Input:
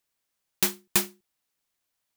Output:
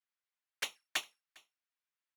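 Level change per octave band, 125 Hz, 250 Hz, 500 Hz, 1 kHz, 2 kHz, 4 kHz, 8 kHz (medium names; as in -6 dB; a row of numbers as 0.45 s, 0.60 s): under -30 dB, -28.0 dB, -16.5 dB, -10.0 dB, -5.0 dB, -7.0 dB, -16.0 dB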